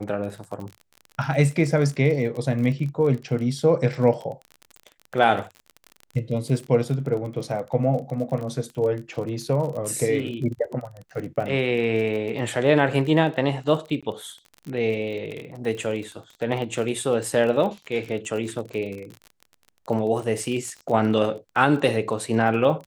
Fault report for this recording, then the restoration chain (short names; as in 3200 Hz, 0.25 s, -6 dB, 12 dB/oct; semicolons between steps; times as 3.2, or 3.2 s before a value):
crackle 34/s -31 dBFS
14.01–14.03 gap 16 ms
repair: de-click; interpolate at 14.01, 16 ms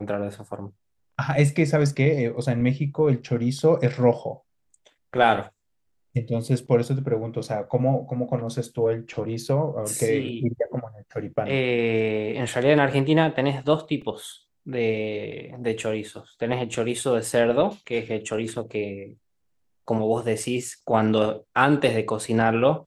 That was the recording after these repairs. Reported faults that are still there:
none